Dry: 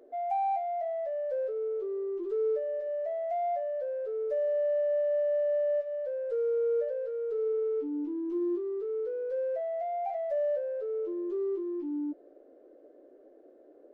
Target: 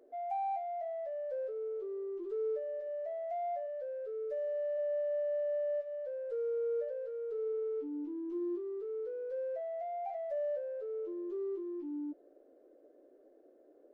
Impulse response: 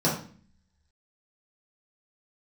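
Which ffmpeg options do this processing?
-filter_complex "[0:a]asplit=3[s0][s1][s2];[s0]afade=t=out:st=3.66:d=0.02[s3];[s1]asuperstop=centerf=830:order=4:qfactor=1.9,afade=t=in:st=3.66:d=0.02,afade=t=out:st=4.77:d=0.02[s4];[s2]afade=t=in:st=4.77:d=0.02[s5];[s3][s4][s5]amix=inputs=3:normalize=0,volume=0.501"

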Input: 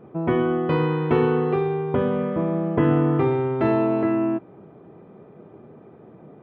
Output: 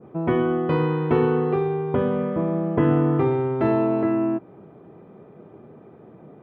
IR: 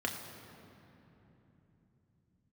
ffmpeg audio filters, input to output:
-af "adynamicequalizer=threshold=0.01:dfrequency=3100:dqfactor=0.71:tfrequency=3100:tqfactor=0.71:attack=5:release=100:ratio=0.375:range=2:mode=cutabove:tftype=bell"

